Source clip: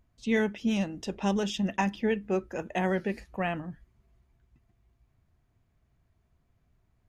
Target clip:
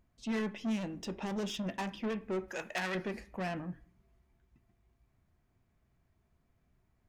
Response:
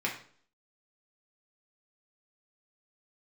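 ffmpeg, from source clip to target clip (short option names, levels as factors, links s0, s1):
-filter_complex "[0:a]asoftclip=type=tanh:threshold=0.0282,asettb=1/sr,asplit=3[s0][s1][s2];[s0]atrim=end=2.484[s3];[s1]atrim=start=2.48:end=2.95,asetpts=PTS-STARTPTS,afade=t=in:d=0.004:c=qsin,afade=t=out:st=0.466:d=0.004:c=qsin,tiltshelf=f=700:g=-9.5[s4];[s2]atrim=start=2.946[s5];[s3][s4]acrossfade=d=0.004:c1=hsin:c2=qsin[s6];[s6][s5]acrossfade=d=0.004:c1=qsin:c2=hsin,asplit=2[s7][s8];[1:a]atrim=start_sample=2205,highshelf=f=4100:g=-12[s9];[s8][s9]afir=irnorm=-1:irlink=0,volume=0.211[s10];[s7][s10]amix=inputs=2:normalize=0,volume=0.708"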